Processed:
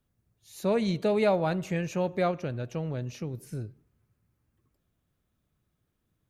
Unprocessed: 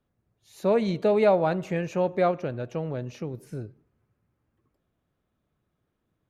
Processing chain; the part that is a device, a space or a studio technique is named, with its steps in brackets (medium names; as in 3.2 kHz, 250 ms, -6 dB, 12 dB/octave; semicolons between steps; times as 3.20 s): smiley-face EQ (bass shelf 160 Hz +3.5 dB; peaking EQ 590 Hz -5 dB 2.9 oct; treble shelf 5.3 kHz +7 dB)